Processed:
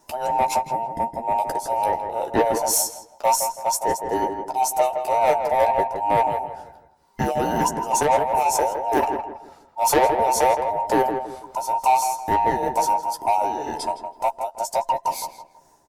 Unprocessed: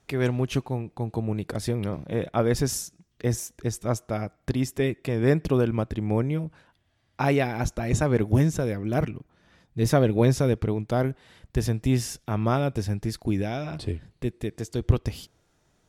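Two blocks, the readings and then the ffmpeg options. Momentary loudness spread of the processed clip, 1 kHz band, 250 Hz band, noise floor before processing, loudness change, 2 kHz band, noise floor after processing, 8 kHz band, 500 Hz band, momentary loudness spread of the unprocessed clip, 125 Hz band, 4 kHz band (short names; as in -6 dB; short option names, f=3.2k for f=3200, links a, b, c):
9 LU, +17.0 dB, -5.5 dB, -68 dBFS, +4.5 dB, +3.0 dB, -55 dBFS, +10.0 dB, +4.0 dB, 10 LU, -14.5 dB, +4.5 dB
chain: -filter_complex "[0:a]afftfilt=real='real(if(between(b,1,1008),(2*floor((b-1)/48)+1)*48-b,b),0)':imag='imag(if(between(b,1,1008),(2*floor((b-1)/48)+1)*48-b,b),0)*if(between(b,1,1008),-1,1)':win_size=2048:overlap=0.75,tiltshelf=f=1.2k:g=5.5,tremolo=f=2.1:d=0.75,aexciter=amount=5.1:drive=3.5:freq=4.9k,asoftclip=type=tanh:threshold=-18dB,asplit=2[a][b];[b]adelay=13,volume=-6.5dB[c];[a][c]amix=inputs=2:normalize=0,asplit=2[d][e];[e]adelay=163,lowpass=f=1.7k:p=1,volume=-6.5dB,asplit=2[f][g];[g]adelay=163,lowpass=f=1.7k:p=1,volume=0.35,asplit=2[h][i];[i]adelay=163,lowpass=f=1.7k:p=1,volume=0.35,asplit=2[j][k];[k]adelay=163,lowpass=f=1.7k:p=1,volume=0.35[l];[d][f][h][j][l]amix=inputs=5:normalize=0,volume=5dB"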